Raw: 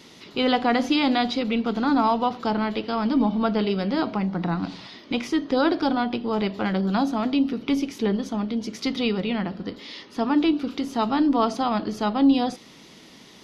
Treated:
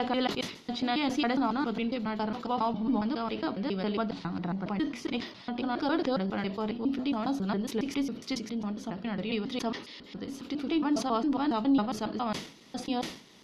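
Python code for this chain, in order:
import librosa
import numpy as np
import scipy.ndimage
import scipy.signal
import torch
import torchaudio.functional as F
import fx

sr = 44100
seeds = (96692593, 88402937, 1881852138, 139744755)

y = fx.block_reorder(x, sr, ms=137.0, group=5)
y = fx.sustainer(y, sr, db_per_s=110.0)
y = F.gain(torch.from_numpy(y), -7.5).numpy()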